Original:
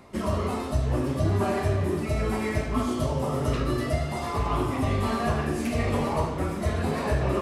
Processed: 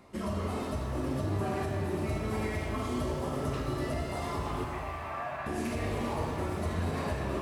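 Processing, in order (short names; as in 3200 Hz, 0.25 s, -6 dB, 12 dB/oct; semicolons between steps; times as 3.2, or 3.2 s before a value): limiter -20 dBFS, peak gain reduction 7 dB; 4.64–5.46 brick-wall FIR band-pass 550–2800 Hz; shimmer reverb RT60 3.1 s, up +7 st, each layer -8 dB, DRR 3 dB; gain -6 dB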